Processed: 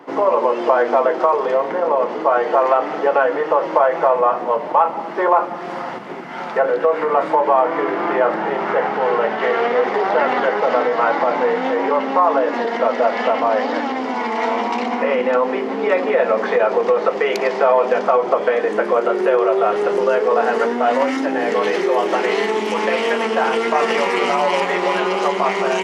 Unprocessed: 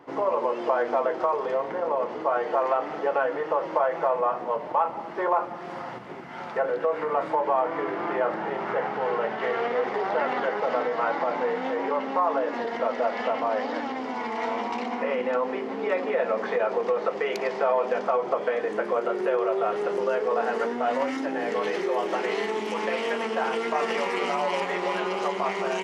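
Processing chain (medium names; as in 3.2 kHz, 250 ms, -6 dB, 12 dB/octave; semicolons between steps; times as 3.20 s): high-pass 160 Hz 24 dB/octave; trim +9 dB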